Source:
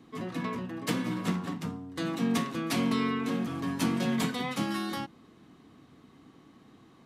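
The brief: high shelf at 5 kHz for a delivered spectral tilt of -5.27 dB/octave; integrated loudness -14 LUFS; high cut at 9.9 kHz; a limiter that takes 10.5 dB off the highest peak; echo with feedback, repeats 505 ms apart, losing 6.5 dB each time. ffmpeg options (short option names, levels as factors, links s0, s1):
-af "lowpass=9900,highshelf=f=5000:g=-8.5,alimiter=level_in=1.41:limit=0.0631:level=0:latency=1,volume=0.708,aecho=1:1:505|1010|1515|2020|2525|3030:0.473|0.222|0.105|0.0491|0.0231|0.0109,volume=11.2"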